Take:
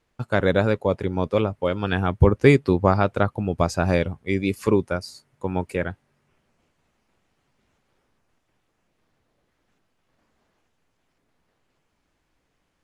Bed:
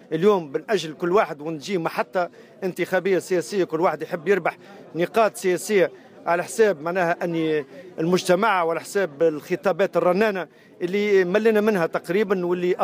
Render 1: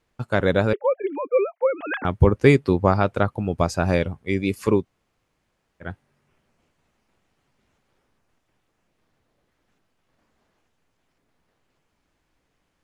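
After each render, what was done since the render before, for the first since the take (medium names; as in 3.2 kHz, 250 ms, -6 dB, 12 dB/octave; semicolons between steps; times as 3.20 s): 0.73–2.05 s: formants replaced by sine waves; 4.82–5.85 s: room tone, crossfade 0.10 s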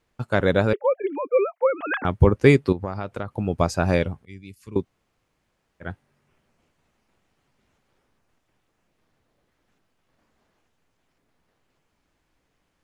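1.41–2.01 s: dynamic bell 1.2 kHz, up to +5 dB, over -43 dBFS, Q 2.3; 2.72–3.31 s: compression 3:1, threshold -28 dBFS; 4.25–4.76 s: amplifier tone stack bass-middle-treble 6-0-2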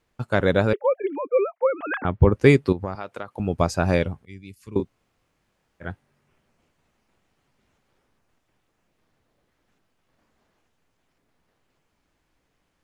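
1.15–2.32 s: distance through air 250 m; 2.95–3.40 s: high-pass 510 Hz 6 dB/octave; 4.77–5.88 s: doubling 25 ms -4.5 dB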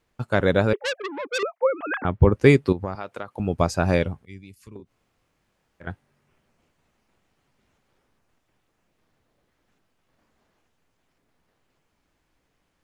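0.75–1.43 s: transformer saturation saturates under 3.6 kHz; 4.38–5.87 s: compression 5:1, threshold -39 dBFS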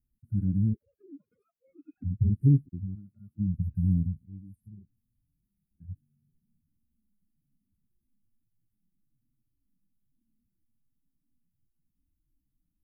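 harmonic-percussive separation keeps harmonic; inverse Chebyshev band-stop 470–6600 Hz, stop band 40 dB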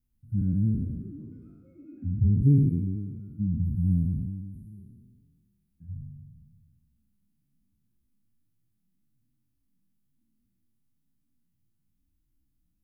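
spectral sustain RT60 1.77 s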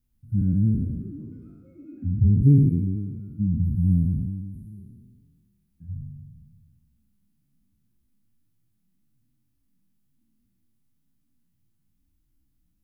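trim +4 dB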